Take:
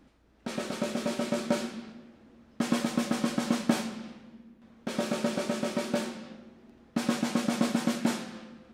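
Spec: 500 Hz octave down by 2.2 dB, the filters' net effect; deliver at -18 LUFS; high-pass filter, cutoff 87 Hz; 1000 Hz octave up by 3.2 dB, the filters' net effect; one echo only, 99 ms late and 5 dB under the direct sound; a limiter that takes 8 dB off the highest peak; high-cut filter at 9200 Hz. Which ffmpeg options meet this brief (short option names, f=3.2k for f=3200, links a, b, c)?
-af "highpass=87,lowpass=9.2k,equalizer=f=500:t=o:g=-4.5,equalizer=f=1k:t=o:g=5.5,alimiter=limit=-19dB:level=0:latency=1,aecho=1:1:99:0.562,volume=14.5dB"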